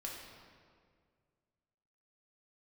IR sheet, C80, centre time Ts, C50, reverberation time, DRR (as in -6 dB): 3.5 dB, 81 ms, 1.5 dB, 2.0 s, -3.0 dB